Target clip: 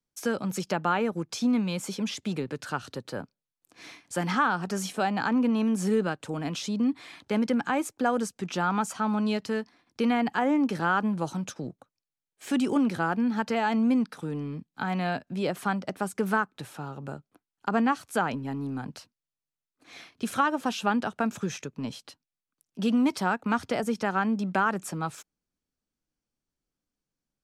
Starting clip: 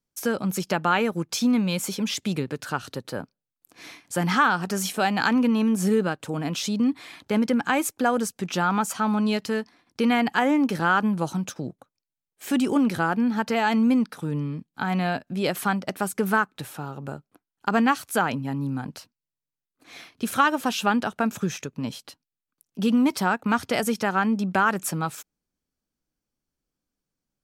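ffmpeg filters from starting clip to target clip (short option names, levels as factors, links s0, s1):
-filter_complex "[0:a]lowpass=9800,acrossover=split=140|1400[s0][s1][s2];[s0]aeval=exprs='0.0106*(abs(mod(val(0)/0.0106+3,4)-2)-1)':c=same[s3];[s2]alimiter=limit=0.075:level=0:latency=1:release=448[s4];[s3][s1][s4]amix=inputs=3:normalize=0,volume=0.708"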